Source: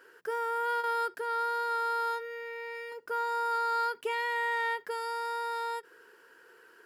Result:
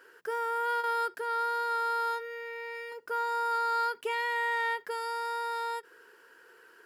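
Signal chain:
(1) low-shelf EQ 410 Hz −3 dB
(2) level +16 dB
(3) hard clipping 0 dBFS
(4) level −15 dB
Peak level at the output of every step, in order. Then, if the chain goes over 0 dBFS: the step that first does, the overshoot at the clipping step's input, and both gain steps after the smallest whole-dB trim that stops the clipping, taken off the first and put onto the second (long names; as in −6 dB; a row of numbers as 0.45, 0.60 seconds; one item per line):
−21.5, −5.5, −5.5, −20.5 dBFS
no step passes full scale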